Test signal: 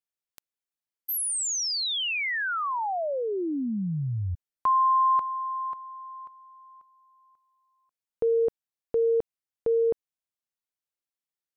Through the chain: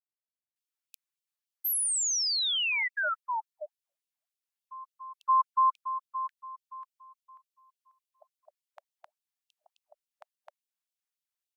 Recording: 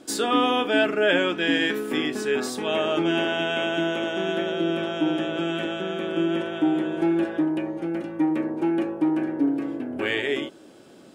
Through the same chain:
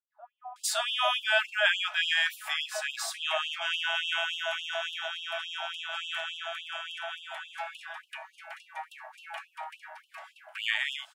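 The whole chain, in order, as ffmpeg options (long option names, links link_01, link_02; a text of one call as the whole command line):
ffmpeg -i in.wav -filter_complex "[0:a]acrossover=split=590[link_01][link_02];[link_02]adelay=560[link_03];[link_01][link_03]amix=inputs=2:normalize=0,afftfilt=real='re*gte(b*sr/1024,570*pow(2700/570,0.5+0.5*sin(2*PI*3.5*pts/sr)))':imag='im*gte(b*sr/1024,570*pow(2700/570,0.5+0.5*sin(2*PI*3.5*pts/sr)))':win_size=1024:overlap=0.75" out.wav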